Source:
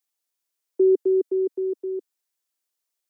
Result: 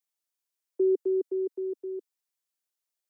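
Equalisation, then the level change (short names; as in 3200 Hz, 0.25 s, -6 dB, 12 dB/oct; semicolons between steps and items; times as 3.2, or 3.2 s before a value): HPF 260 Hz; -5.5 dB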